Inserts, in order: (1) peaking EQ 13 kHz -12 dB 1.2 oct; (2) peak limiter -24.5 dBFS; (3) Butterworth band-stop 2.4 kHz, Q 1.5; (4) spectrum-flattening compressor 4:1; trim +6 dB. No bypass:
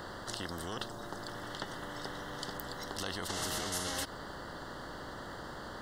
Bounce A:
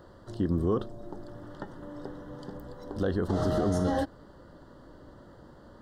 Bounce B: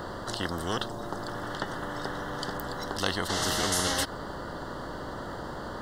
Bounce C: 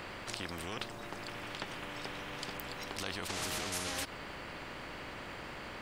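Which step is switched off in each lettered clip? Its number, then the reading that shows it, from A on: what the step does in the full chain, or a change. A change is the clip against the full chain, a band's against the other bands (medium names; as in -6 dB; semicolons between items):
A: 4, 8 kHz band -18.0 dB; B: 2, crest factor change +2.0 dB; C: 3, 2 kHz band +3.0 dB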